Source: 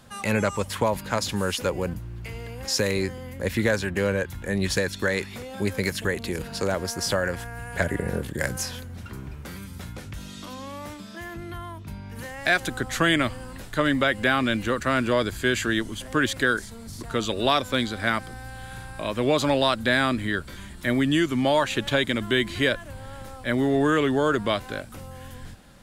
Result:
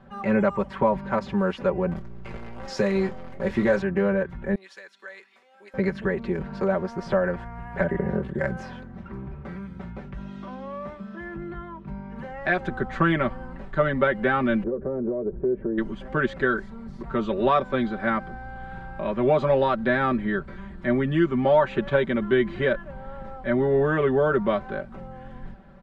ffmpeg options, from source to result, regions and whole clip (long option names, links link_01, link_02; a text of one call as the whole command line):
ffmpeg -i in.wav -filter_complex "[0:a]asettb=1/sr,asplit=3[link_01][link_02][link_03];[link_01]atrim=end=1.914[link_04];[link_02]atrim=start=1.91:end=3.82,asetpts=PTS-STARTPTS,afade=type=in:duration=0.004:curve=qsin,afade=type=out:start_time=1.906:duration=0.004:curve=qsin,bass=frequency=250:gain=-1,treble=frequency=4000:gain=11,acrusher=bits=6:dc=4:mix=0:aa=0.000001,asplit=2[link_05][link_06];[link_06]adelay=25,volume=-11dB[link_07];[link_05][link_07]amix=inputs=2:normalize=0,atrim=end_sample=84231[link_08];[link_03]atrim=start=3.816[link_09];[link_04][link_08]acrossfade=duration=0.004:curve1=hsin:curve2=qsin[link_10];[link_10][link_09]acrossfade=duration=0.004:curve1=qsin:curve2=hsin,asettb=1/sr,asplit=3[link_11][link_12][link_13];[link_11]atrim=end=4.554[link_14];[link_12]atrim=start=4.55:end=5.74,asetpts=PTS-STARTPTS,afade=type=in:duration=0.004:curve=qsin,afade=type=out:start_time=1.186:duration=0.004:curve=qsin,highpass=290,aderivative[link_15];[link_13]atrim=start=5.736[link_16];[link_14][link_15]acrossfade=duration=0.004:curve1=hsin:curve2=qsin[link_17];[link_17][link_16]acrossfade=duration=0.004:curve1=qsin:curve2=hsin,asettb=1/sr,asplit=3[link_18][link_19][link_20];[link_18]atrim=end=14.634[link_21];[link_19]atrim=start=14.63:end=15.78,asetpts=PTS-STARTPTS,afade=type=in:duration=0.004:curve=qsin,afade=type=out:start_time=1.146:duration=0.004:curve=qsin,lowpass=frequency=460:width_type=q:width=4.4,acompressor=threshold=-25dB:ratio=6:attack=3.2:release=140:knee=1:detection=peak[link_22];[link_20]atrim=start=15.776[link_23];[link_21][link_22]acrossfade=duration=0.004:curve1=hsin:curve2=qsin[link_24];[link_24][link_23]acrossfade=duration=0.004:curve1=qsin:curve2=hsin,lowpass=1400,aecho=1:1:5.2:0.85" out.wav